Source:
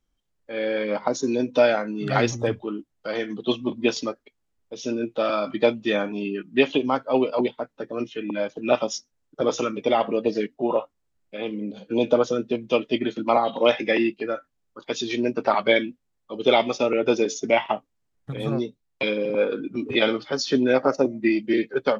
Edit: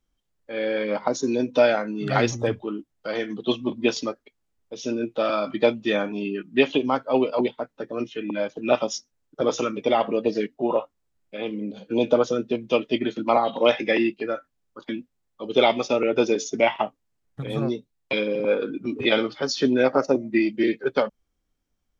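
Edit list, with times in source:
14.89–15.79 s: delete

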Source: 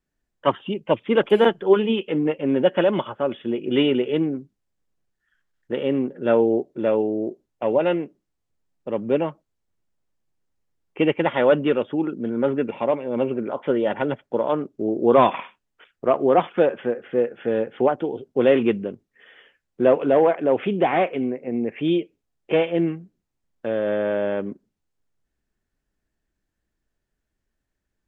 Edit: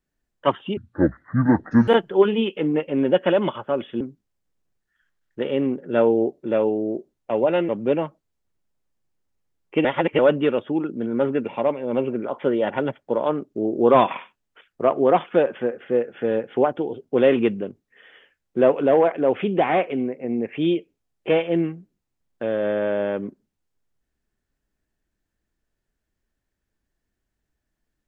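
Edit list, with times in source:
0.77–1.39 s: speed 56%
3.52–4.33 s: delete
8.01–8.92 s: delete
11.08–11.42 s: reverse

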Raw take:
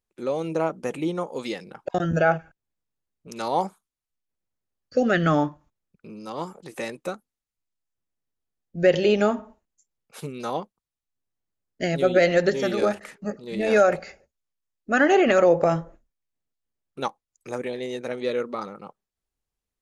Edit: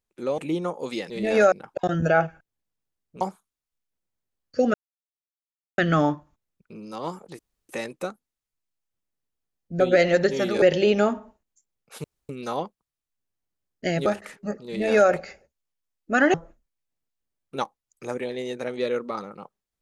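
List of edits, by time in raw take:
0.38–0.91 s: delete
3.32–3.59 s: delete
5.12 s: insert silence 1.04 s
6.73 s: insert room tone 0.30 s
10.26 s: insert room tone 0.25 s
12.03–12.85 s: move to 8.84 s
13.46–13.88 s: copy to 1.63 s
15.13–15.78 s: delete

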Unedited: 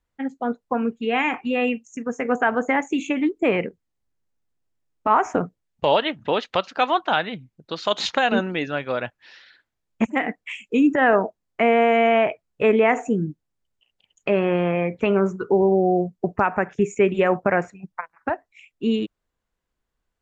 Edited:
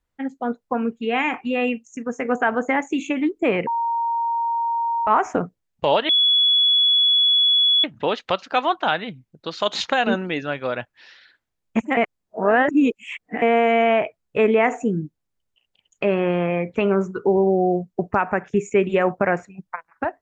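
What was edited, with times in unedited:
3.67–5.07 s: bleep 930 Hz -19.5 dBFS
6.09 s: add tone 3.39 kHz -13.5 dBFS 1.75 s
10.22–11.67 s: reverse

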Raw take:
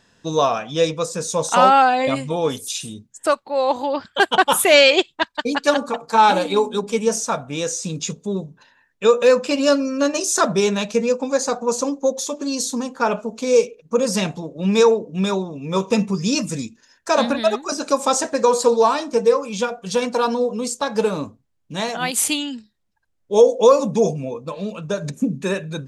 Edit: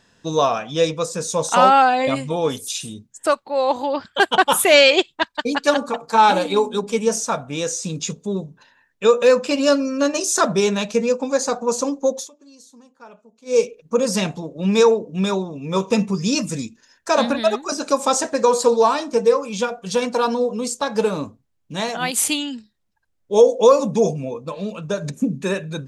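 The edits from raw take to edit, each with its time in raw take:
12.15–13.60 s: dip -23.5 dB, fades 0.15 s

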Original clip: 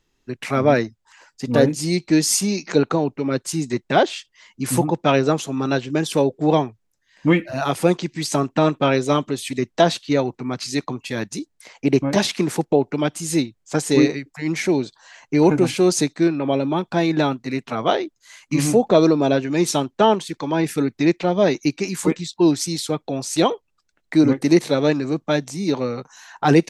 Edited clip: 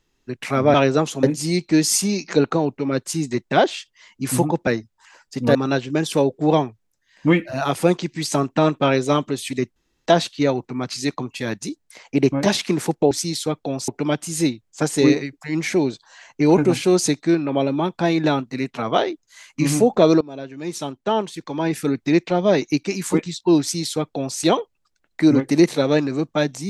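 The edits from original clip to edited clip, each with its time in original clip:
0.74–1.62 s: swap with 5.06–5.55 s
9.76 s: insert room tone 0.30 s
19.14–20.97 s: fade in, from -21 dB
22.54–23.31 s: copy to 12.81 s

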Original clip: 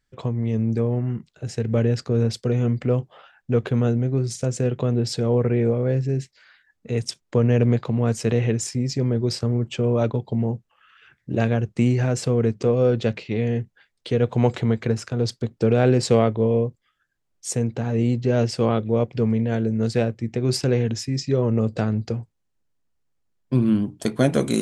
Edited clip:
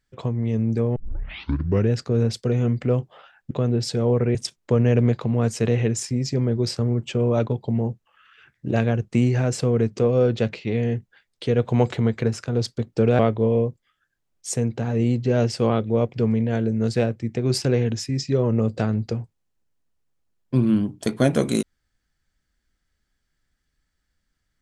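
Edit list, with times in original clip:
0.96 s: tape start 0.94 s
3.51–4.75 s: delete
5.59–6.99 s: delete
15.83–16.18 s: delete

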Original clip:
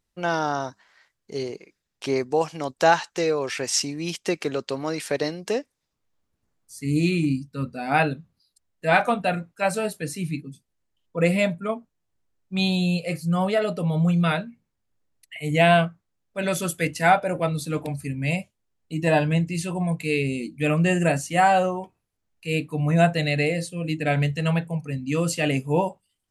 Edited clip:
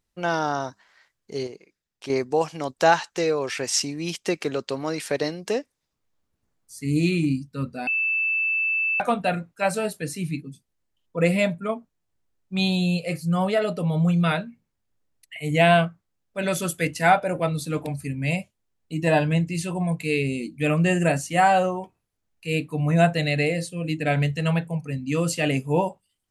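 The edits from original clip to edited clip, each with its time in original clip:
1.47–2.10 s: gain -6 dB
7.87–9.00 s: bleep 2.64 kHz -20.5 dBFS

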